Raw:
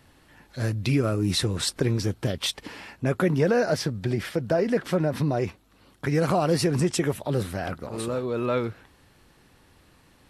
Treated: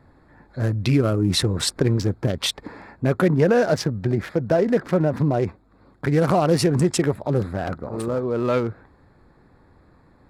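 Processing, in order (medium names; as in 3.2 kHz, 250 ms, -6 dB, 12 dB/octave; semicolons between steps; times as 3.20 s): local Wiener filter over 15 samples; trim +4.5 dB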